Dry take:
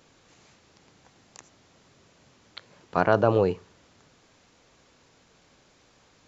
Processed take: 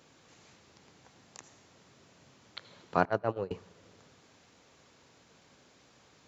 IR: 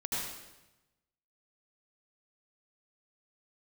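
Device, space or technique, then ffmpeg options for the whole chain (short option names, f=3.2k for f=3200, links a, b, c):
compressed reverb return: -filter_complex "[0:a]asettb=1/sr,asplit=3[a][b][c];[a]atrim=end=3.054[d];[b]atrim=start=3.05:end=3.51,asetpts=PTS-STARTPTS,afade=t=in:d=0.004:c=qsin,afade=t=out:st=0.456:d=0.004:c=qsin,agate=range=-33dB:threshold=-17dB:ratio=16:detection=peak[e];[c]atrim=start=3.506[f];[d][e]acrossfade=d=0.004:c1=hsin:c2=qsin[g];[g][f]acrossfade=d=0.004:c1=qsin:c2=hsin,asplit=2[h][i];[1:a]atrim=start_sample=2205[j];[i][j]afir=irnorm=-1:irlink=0,acompressor=threshold=-39dB:ratio=12,volume=-13dB[k];[h][k]amix=inputs=2:normalize=0,highpass=71,volume=-3dB"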